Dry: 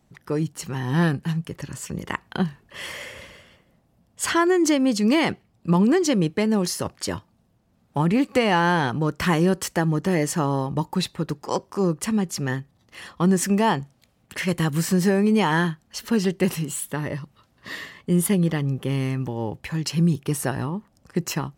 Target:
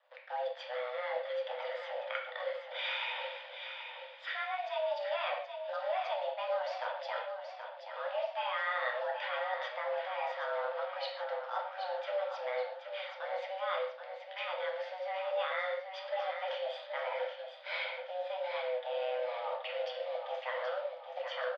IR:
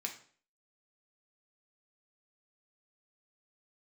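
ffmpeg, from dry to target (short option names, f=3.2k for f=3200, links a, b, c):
-filter_complex "[0:a]areverse,acompressor=threshold=-32dB:ratio=12,areverse,acrusher=bits=9:dc=4:mix=0:aa=0.000001[a];[1:a]atrim=start_sample=2205,afade=t=out:st=0.15:d=0.01,atrim=end_sample=7056,asetrate=27783,aresample=44100[b];[a][b]afir=irnorm=-1:irlink=0,highpass=f=160:t=q:w=0.5412,highpass=f=160:t=q:w=1.307,lowpass=f=3.5k:t=q:w=0.5176,lowpass=f=3.5k:t=q:w=0.7071,lowpass=f=3.5k:t=q:w=1.932,afreqshift=370,aecho=1:1:777|1554|2331|3108|3885:0.398|0.183|0.0842|0.0388|0.0178,volume=-1.5dB"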